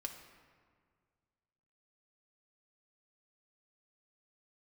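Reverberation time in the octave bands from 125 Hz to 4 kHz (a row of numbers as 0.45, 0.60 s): 2.5, 2.2, 1.9, 1.8, 1.5, 1.1 s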